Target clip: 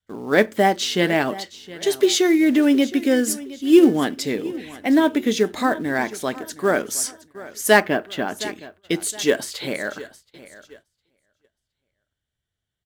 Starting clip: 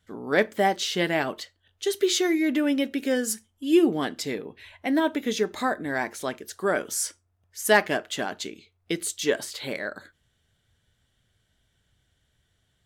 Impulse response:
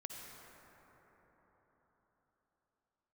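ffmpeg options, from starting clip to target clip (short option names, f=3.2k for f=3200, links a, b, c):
-filter_complex "[0:a]asplit=2[a][b];[b]acrusher=bits=4:mode=log:mix=0:aa=0.000001,volume=-4dB[c];[a][c]amix=inputs=2:normalize=0,asettb=1/sr,asplit=3[d][e][f];[d]atrim=end=7.804[g];[e]atrim=start=7.8:end=8.41,asetpts=PTS-STARTPTS,afade=t=in:d=0.004:c=qsin,afade=t=out:st=0.606:d=0.004:c=qsin,equalizer=f=7.6k:w=0.81:g=-15[h];[f]atrim=start=8.406[i];[g][h]acrossfade=d=0.004:c1=hsin:c2=qsin[j];[j][i]acrossfade=d=0.004:c1=qsin:c2=hsin,aecho=1:1:716|1432|2148:0.133|0.052|0.0203,adynamicequalizer=threshold=0.0355:dfrequency=250:dqfactor=1.2:tfrequency=250:tqfactor=1.2:attack=5:release=100:ratio=0.375:range=2:mode=boostabove:tftype=bell,agate=range=-18dB:threshold=-47dB:ratio=16:detection=peak"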